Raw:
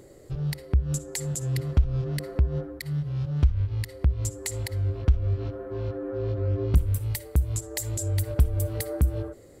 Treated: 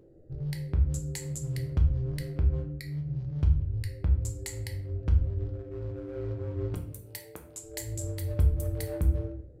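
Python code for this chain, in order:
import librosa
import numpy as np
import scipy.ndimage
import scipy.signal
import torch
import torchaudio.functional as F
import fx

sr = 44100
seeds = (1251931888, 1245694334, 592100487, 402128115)

y = fx.wiener(x, sr, points=41)
y = fx.highpass(y, sr, hz=fx.line((6.73, 240.0), (7.62, 510.0)), slope=12, at=(6.73, 7.62), fade=0.02)
y = fx.room_shoebox(y, sr, seeds[0], volume_m3=90.0, walls='mixed', distance_m=0.56)
y = y * 10.0 ** (-6.5 / 20.0)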